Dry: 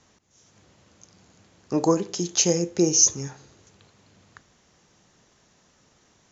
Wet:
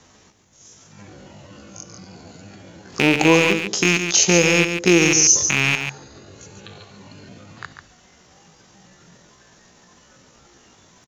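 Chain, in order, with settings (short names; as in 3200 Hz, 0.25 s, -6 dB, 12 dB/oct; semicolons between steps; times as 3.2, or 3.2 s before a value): rattling part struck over -36 dBFS, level -12 dBFS; spectral noise reduction 9 dB; tempo 0.57×; on a send: echo 0.142 s -8.5 dB; on the sum: three-band squash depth 40%; gain +6 dB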